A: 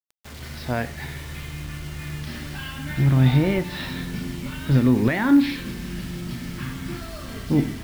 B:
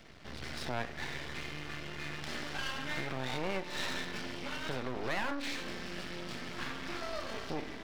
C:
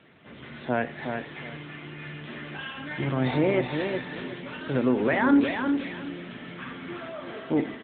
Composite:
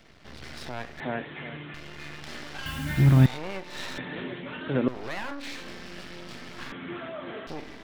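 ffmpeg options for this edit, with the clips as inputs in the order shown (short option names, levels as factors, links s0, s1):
-filter_complex "[2:a]asplit=3[s0][s1][s2];[1:a]asplit=5[s3][s4][s5][s6][s7];[s3]atrim=end=1.002[s8];[s0]atrim=start=0.998:end=1.742[s9];[s4]atrim=start=1.738:end=2.662[s10];[0:a]atrim=start=2.658:end=3.262[s11];[s5]atrim=start=3.258:end=3.982[s12];[s1]atrim=start=3.978:end=4.882[s13];[s6]atrim=start=4.878:end=6.722[s14];[s2]atrim=start=6.718:end=7.472[s15];[s7]atrim=start=7.468[s16];[s8][s9]acrossfade=d=0.004:c1=hsin:c2=hsin[s17];[s17][s10]acrossfade=d=0.004:c1=hsin:c2=hsin[s18];[s18][s11]acrossfade=d=0.004:c1=hsin:c2=hsin[s19];[s19][s12]acrossfade=d=0.004:c1=hsin:c2=hsin[s20];[s20][s13]acrossfade=d=0.004:c1=hsin:c2=hsin[s21];[s21][s14]acrossfade=d=0.004:c1=hsin:c2=hsin[s22];[s22][s15]acrossfade=d=0.004:c1=hsin:c2=hsin[s23];[s23][s16]acrossfade=d=0.004:c1=hsin:c2=hsin"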